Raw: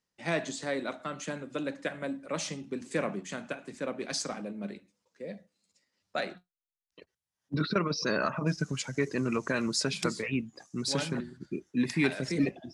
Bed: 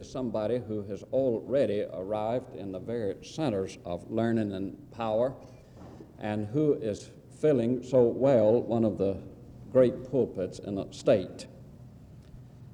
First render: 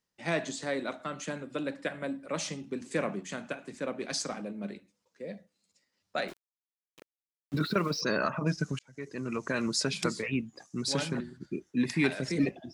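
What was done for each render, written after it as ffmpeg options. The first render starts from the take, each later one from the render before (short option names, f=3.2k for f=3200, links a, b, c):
-filter_complex "[0:a]asettb=1/sr,asplit=3[a][b][c];[a]atrim=end=1.454[d];[b]atrim=start=1.45:end=2.27,asetpts=PTS-STARTPTS,afade=t=in:d=0.004:c=qsin,afade=t=out:st=0.816:d=0.004:c=qsin,bandreject=f=6.4k:w=5.9[e];[c]atrim=start=2.266[f];[d][e]acrossfade=d=0.004:c1=hsin:c2=qsin[g];[g][f]acrossfade=d=0.004:c1=qsin:c2=hsin,asettb=1/sr,asplit=3[h][i][j];[h]atrim=end=6.284[k];[i]atrim=start=6.28:end=8.01,asetpts=PTS-STARTPTS,afade=t=in:d=0.004:c=qsin,afade=t=out:st=1.726:d=0.004:c=qsin,aeval=exprs='val(0)*gte(abs(val(0)),0.00596)':c=same[l];[j]atrim=start=8.006[m];[k][l]acrossfade=d=0.004:c1=hsin:c2=qsin[n];[n][m]acrossfade=d=0.004:c1=qsin:c2=hsin,asplit=2[o][p];[o]atrim=end=8.79,asetpts=PTS-STARTPTS,afade=t=out:st=8.786:d=0.004:c=hsin[q];[p]atrim=start=8.79,asetpts=PTS-STARTPTS,afade=t=in:d=0.86[r];[q][r]concat=n=2:v=0:a=1"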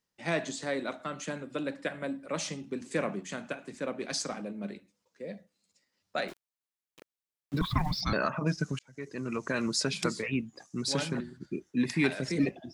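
-filter_complex "[0:a]asettb=1/sr,asplit=3[a][b][c];[a]atrim=end=7.614[d];[b]atrim=start=7.61:end=8.13,asetpts=PTS-STARTPTS,afade=t=in:d=0.004:c=qsin,afade=t=out:st=0.516:d=0.004:c=qsin,afreqshift=-330[e];[c]atrim=start=8.126[f];[d][e]acrossfade=d=0.004:c1=hsin:c2=qsin[g];[g][f]acrossfade=d=0.004:c1=qsin:c2=hsin"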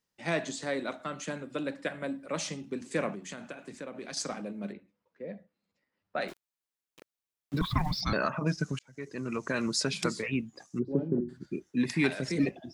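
-filter_complex "[0:a]asettb=1/sr,asplit=3[a][b][c];[a]atrim=end=3.144[d];[b]atrim=start=3.14:end=4.17,asetpts=PTS-STARTPTS,afade=t=in:d=0.004:c=qsin,afade=t=out:st=1.026:d=0.004:c=qsin,acompressor=threshold=-37dB:ratio=4:attack=3.2:release=140:knee=1:detection=peak[e];[c]atrim=start=4.166[f];[d][e]acrossfade=d=0.004:c1=hsin:c2=qsin[g];[g][f]acrossfade=d=0.004:c1=qsin:c2=hsin,asettb=1/sr,asplit=3[h][i][j];[h]atrim=end=4.724[k];[i]atrim=start=4.72:end=6.21,asetpts=PTS-STARTPTS,afade=t=in:d=0.004:c=qsin,afade=t=out:st=1.486:d=0.004:c=qsin,lowpass=2.1k[l];[j]atrim=start=6.206[m];[k][l]acrossfade=d=0.004:c1=hsin:c2=qsin[n];[n][m]acrossfade=d=0.004:c1=qsin:c2=hsin,asplit=3[o][p][q];[o]afade=t=out:st=10.78:d=0.02[r];[p]lowpass=f=370:t=q:w=2.7,afade=t=in:st=10.78:d=0.02,afade=t=out:st=11.28:d=0.02[s];[q]afade=t=in:st=11.28:d=0.02[t];[r][s][t]amix=inputs=3:normalize=0"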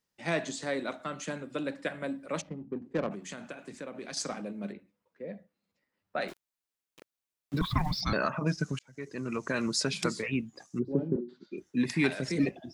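-filter_complex "[0:a]asplit=3[a][b][c];[a]afade=t=out:st=2.4:d=0.02[d];[b]adynamicsmooth=sensitivity=1.5:basefreq=520,afade=t=in:st=2.4:d=0.02,afade=t=out:st=3.1:d=0.02[e];[c]afade=t=in:st=3.1:d=0.02[f];[d][e][f]amix=inputs=3:normalize=0,asettb=1/sr,asplit=3[g][h][i];[g]atrim=end=11.164[j];[h]atrim=start=11.16:end=11.58,asetpts=PTS-STARTPTS,afade=t=in:d=0.004:c=qsin,afade=t=out:st=0.416:d=0.004:c=qsin,highpass=f=250:w=0.5412,highpass=f=250:w=1.3066,equalizer=f=290:t=q:w=4:g=-9,equalizer=f=710:t=q:w=4:g=-8,equalizer=f=1.7k:t=q:w=4:g=-10,equalizer=f=3.8k:t=q:w=4:g=8,lowpass=f=5.3k:w=0.5412,lowpass=f=5.3k:w=1.3066[k];[i]atrim=start=11.576[l];[j][k]acrossfade=d=0.004:c1=hsin:c2=qsin[m];[m][l]acrossfade=d=0.004:c1=qsin:c2=hsin"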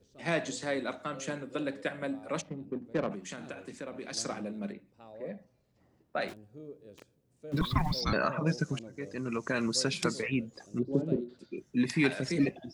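-filter_complex "[1:a]volume=-21dB[a];[0:a][a]amix=inputs=2:normalize=0"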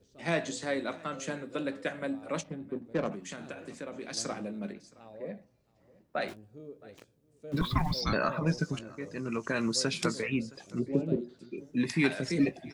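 -filter_complex "[0:a]asplit=2[a][b];[b]adelay=18,volume=-13.5dB[c];[a][c]amix=inputs=2:normalize=0,aecho=1:1:668:0.0668"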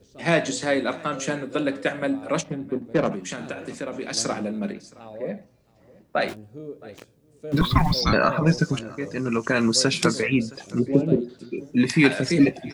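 -af "volume=9.5dB"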